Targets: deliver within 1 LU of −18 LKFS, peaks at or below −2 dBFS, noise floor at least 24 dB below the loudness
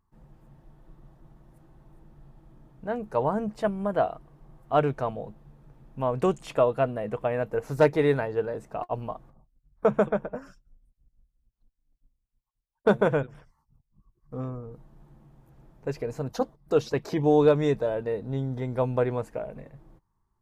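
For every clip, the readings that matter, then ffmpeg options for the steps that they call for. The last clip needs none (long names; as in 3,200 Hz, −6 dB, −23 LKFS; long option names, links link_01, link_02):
integrated loudness −27.0 LKFS; sample peak −10.0 dBFS; target loudness −18.0 LKFS
→ -af "volume=9dB,alimiter=limit=-2dB:level=0:latency=1"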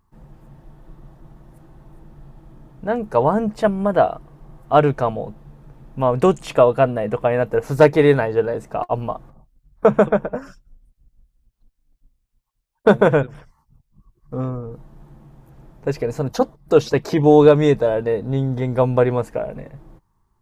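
integrated loudness −18.5 LKFS; sample peak −2.0 dBFS; background noise floor −68 dBFS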